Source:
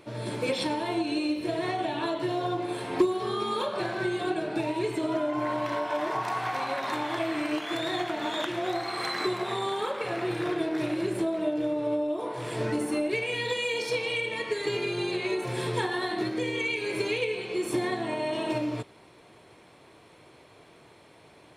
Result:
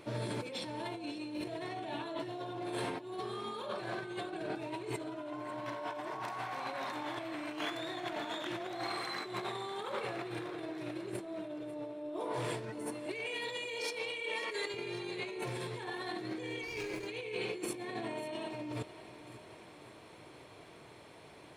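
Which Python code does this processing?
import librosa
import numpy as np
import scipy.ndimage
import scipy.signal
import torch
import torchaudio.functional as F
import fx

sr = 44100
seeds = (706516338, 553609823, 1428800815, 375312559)

p1 = fx.highpass(x, sr, hz=390.0, slope=12, at=(13.06, 14.74))
p2 = fx.over_compress(p1, sr, threshold_db=-35.0, ratio=-1.0)
p3 = p2 + fx.echo_feedback(p2, sr, ms=545, feedback_pct=56, wet_db=-15, dry=0)
p4 = fx.running_max(p3, sr, window=5, at=(16.62, 17.06), fade=0.02)
y = p4 * librosa.db_to_amplitude(-5.5)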